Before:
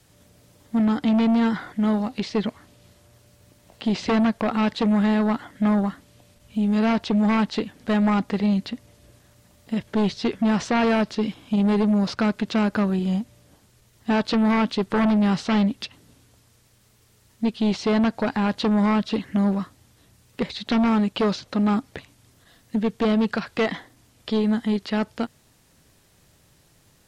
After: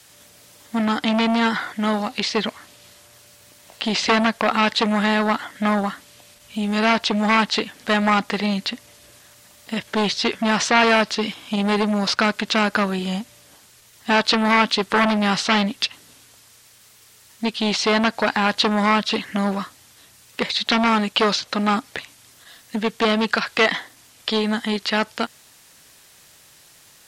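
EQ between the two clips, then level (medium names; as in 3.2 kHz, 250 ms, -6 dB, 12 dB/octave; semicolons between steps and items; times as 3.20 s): tilt shelf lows -7 dB, about 660 Hz; bass shelf 120 Hz -6 dB; +5.0 dB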